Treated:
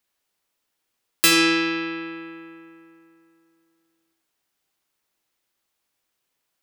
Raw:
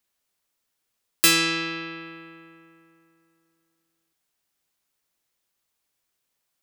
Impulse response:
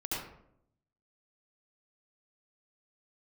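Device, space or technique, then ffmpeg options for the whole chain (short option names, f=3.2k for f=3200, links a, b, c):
filtered reverb send: -filter_complex "[0:a]asplit=2[a][b];[b]highpass=200,lowpass=5.6k[c];[1:a]atrim=start_sample=2205[d];[c][d]afir=irnorm=-1:irlink=0,volume=-7dB[e];[a][e]amix=inputs=2:normalize=0"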